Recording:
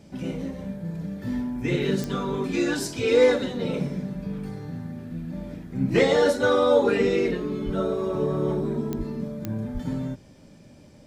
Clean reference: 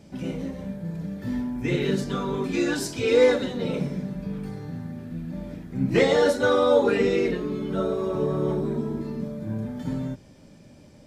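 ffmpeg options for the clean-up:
ffmpeg -i in.wav -filter_complex "[0:a]adeclick=threshold=4,asplit=3[link_01][link_02][link_03];[link_01]afade=type=out:start_time=7.65:duration=0.02[link_04];[link_02]highpass=frequency=140:width=0.5412,highpass=frequency=140:width=1.3066,afade=type=in:start_time=7.65:duration=0.02,afade=type=out:start_time=7.77:duration=0.02[link_05];[link_03]afade=type=in:start_time=7.77:duration=0.02[link_06];[link_04][link_05][link_06]amix=inputs=3:normalize=0,asplit=3[link_07][link_08][link_09];[link_07]afade=type=out:start_time=8.97:duration=0.02[link_10];[link_08]highpass=frequency=140:width=0.5412,highpass=frequency=140:width=1.3066,afade=type=in:start_time=8.97:duration=0.02,afade=type=out:start_time=9.09:duration=0.02[link_11];[link_09]afade=type=in:start_time=9.09:duration=0.02[link_12];[link_10][link_11][link_12]amix=inputs=3:normalize=0,asplit=3[link_13][link_14][link_15];[link_13]afade=type=out:start_time=9.73:duration=0.02[link_16];[link_14]highpass=frequency=140:width=0.5412,highpass=frequency=140:width=1.3066,afade=type=in:start_time=9.73:duration=0.02,afade=type=out:start_time=9.85:duration=0.02[link_17];[link_15]afade=type=in:start_time=9.85:duration=0.02[link_18];[link_16][link_17][link_18]amix=inputs=3:normalize=0" out.wav

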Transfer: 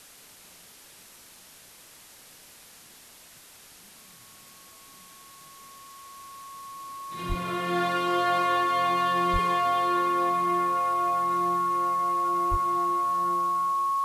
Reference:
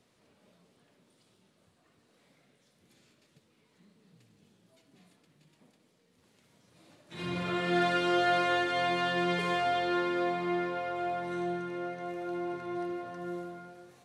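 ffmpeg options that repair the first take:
ffmpeg -i in.wav -filter_complex "[0:a]bandreject=frequency=1100:width=30,asplit=3[link_01][link_02][link_03];[link_01]afade=type=out:start_time=7.28:duration=0.02[link_04];[link_02]highpass=frequency=140:width=0.5412,highpass=frequency=140:width=1.3066,afade=type=in:start_time=7.28:duration=0.02,afade=type=out:start_time=7.4:duration=0.02[link_05];[link_03]afade=type=in:start_time=7.4:duration=0.02[link_06];[link_04][link_05][link_06]amix=inputs=3:normalize=0,asplit=3[link_07][link_08][link_09];[link_07]afade=type=out:start_time=9.32:duration=0.02[link_10];[link_08]highpass=frequency=140:width=0.5412,highpass=frequency=140:width=1.3066,afade=type=in:start_time=9.32:duration=0.02,afade=type=out:start_time=9.44:duration=0.02[link_11];[link_09]afade=type=in:start_time=9.44:duration=0.02[link_12];[link_10][link_11][link_12]amix=inputs=3:normalize=0,asplit=3[link_13][link_14][link_15];[link_13]afade=type=out:start_time=12.5:duration=0.02[link_16];[link_14]highpass=frequency=140:width=0.5412,highpass=frequency=140:width=1.3066,afade=type=in:start_time=12.5:duration=0.02,afade=type=out:start_time=12.62:duration=0.02[link_17];[link_15]afade=type=in:start_time=12.62:duration=0.02[link_18];[link_16][link_17][link_18]amix=inputs=3:normalize=0,afwtdn=0.0035" out.wav

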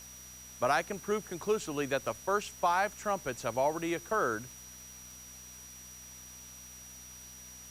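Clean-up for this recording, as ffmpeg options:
ffmpeg -i in.wav -af "adeclick=threshold=4,bandreject=frequency=62.5:width_type=h:width=4,bandreject=frequency=125:width_type=h:width=4,bandreject=frequency=187.5:width_type=h:width=4,bandreject=frequency=250:width_type=h:width=4,bandreject=frequency=5800:width=30,afwtdn=0.0022" out.wav

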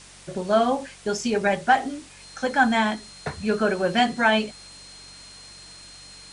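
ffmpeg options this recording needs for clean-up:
ffmpeg -i in.wav -af "bandreject=frequency=47:width_type=h:width=4,bandreject=frequency=94:width_type=h:width=4,bandreject=frequency=141:width_type=h:width=4,bandreject=frequency=188:width_type=h:width=4,bandreject=frequency=4200:width=30,afftdn=noise_reduction=23:noise_floor=-45" out.wav

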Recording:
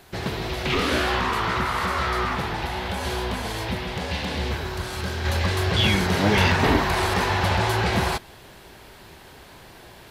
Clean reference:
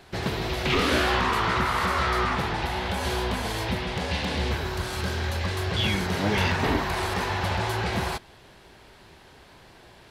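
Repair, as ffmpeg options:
ffmpeg -i in.wav -af "agate=range=-21dB:threshold=-38dB,asetnsamples=nb_out_samples=441:pad=0,asendcmd='5.25 volume volume -5dB',volume=0dB" out.wav

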